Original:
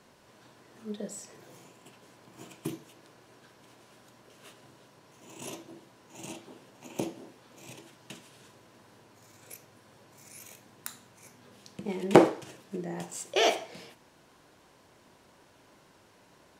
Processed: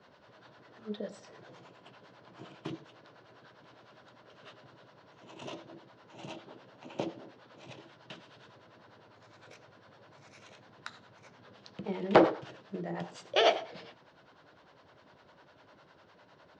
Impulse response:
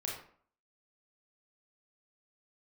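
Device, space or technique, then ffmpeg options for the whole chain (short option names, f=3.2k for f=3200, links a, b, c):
guitar amplifier with harmonic tremolo: -filter_complex "[0:a]acrossover=split=510[a][b];[a]aeval=exprs='val(0)*(1-0.7/2+0.7/2*cos(2*PI*9.9*n/s))':c=same[c];[b]aeval=exprs='val(0)*(1-0.7/2-0.7/2*cos(2*PI*9.9*n/s))':c=same[d];[c][d]amix=inputs=2:normalize=0,asoftclip=type=tanh:threshold=-14.5dB,highpass=79,equalizer=f=230:t=q:w=4:g=-5,equalizer=f=360:t=q:w=4:g=-3,equalizer=f=600:t=q:w=4:g=3,equalizer=f=1.4k:t=q:w=4:g=4,equalizer=f=2.4k:t=q:w=4:g=-4,lowpass=f=4.5k:w=0.5412,lowpass=f=4.5k:w=1.3066,volume=3.5dB"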